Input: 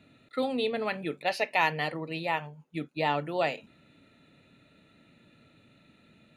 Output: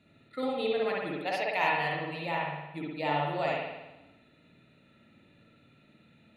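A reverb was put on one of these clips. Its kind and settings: spring tank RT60 1 s, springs 54 ms, chirp 25 ms, DRR -3.5 dB; gain -6 dB

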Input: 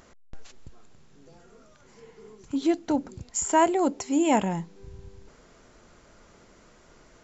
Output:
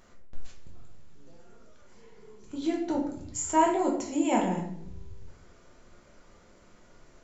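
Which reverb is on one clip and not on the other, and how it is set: shoebox room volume 120 m³, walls mixed, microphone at 1 m; gain -7 dB

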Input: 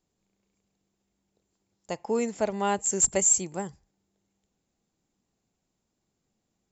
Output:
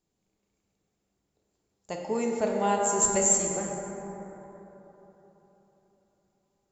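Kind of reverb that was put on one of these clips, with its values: plate-style reverb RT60 3.9 s, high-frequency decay 0.35×, DRR -1 dB; gain -3 dB

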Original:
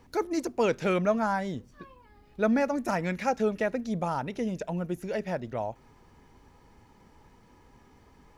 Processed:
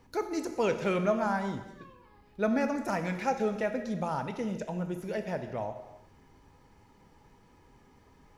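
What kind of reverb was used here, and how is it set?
non-linear reverb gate 0.4 s falling, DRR 6.5 dB; gain -3 dB

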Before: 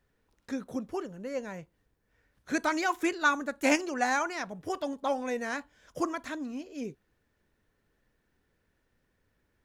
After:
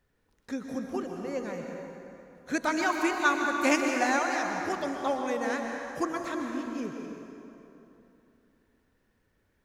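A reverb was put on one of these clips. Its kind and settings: plate-style reverb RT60 3.1 s, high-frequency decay 0.65×, pre-delay 0.11 s, DRR 2 dB

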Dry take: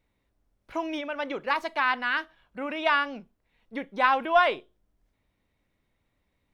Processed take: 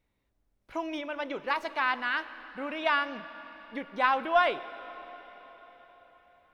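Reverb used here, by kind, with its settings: digital reverb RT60 4.6 s, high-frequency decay 0.95×, pre-delay 60 ms, DRR 14 dB; gain -3 dB

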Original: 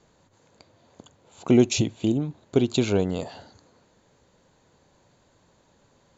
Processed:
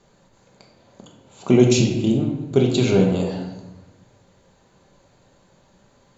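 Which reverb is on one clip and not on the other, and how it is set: shoebox room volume 390 m³, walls mixed, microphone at 1.2 m; gain +1.5 dB

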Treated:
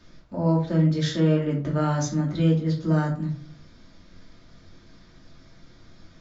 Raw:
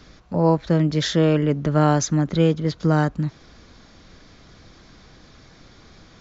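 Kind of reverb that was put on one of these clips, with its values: shoebox room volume 250 m³, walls furnished, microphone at 2.7 m; gain -11 dB

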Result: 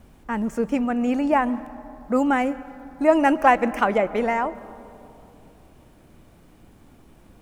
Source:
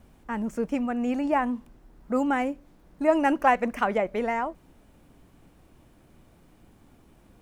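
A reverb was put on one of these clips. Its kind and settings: digital reverb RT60 3 s, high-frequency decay 0.3×, pre-delay 90 ms, DRR 17 dB; gain +4.5 dB

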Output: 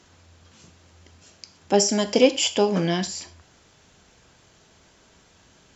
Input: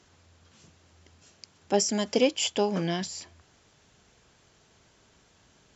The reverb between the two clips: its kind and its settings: non-linear reverb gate 0.14 s falling, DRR 9.5 dB; gain +5 dB

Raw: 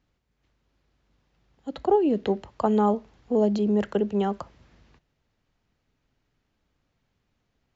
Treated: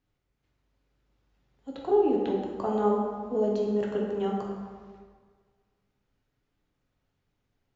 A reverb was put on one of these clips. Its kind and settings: plate-style reverb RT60 1.7 s, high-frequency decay 0.55×, DRR -2.5 dB; gain -8.5 dB

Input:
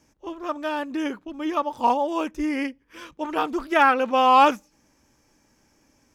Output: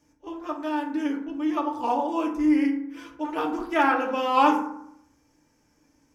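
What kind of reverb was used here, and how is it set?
FDN reverb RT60 0.74 s, low-frequency decay 1.2×, high-frequency decay 0.45×, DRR 0 dB; gain -6.5 dB

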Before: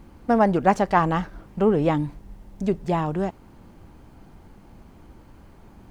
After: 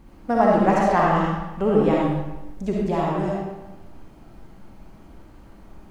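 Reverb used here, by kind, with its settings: digital reverb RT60 1 s, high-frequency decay 0.85×, pre-delay 20 ms, DRR -4 dB; gain -3.5 dB

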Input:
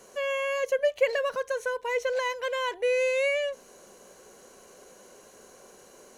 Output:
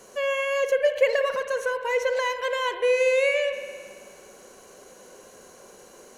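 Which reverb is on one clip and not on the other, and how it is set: spring tank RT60 1.8 s, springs 54 ms, chirp 25 ms, DRR 8 dB; gain +3 dB

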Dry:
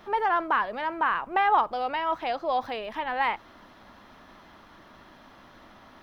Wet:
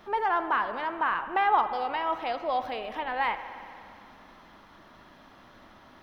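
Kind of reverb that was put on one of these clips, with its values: spring tank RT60 2.5 s, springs 58 ms, chirp 70 ms, DRR 10 dB; gain -2 dB

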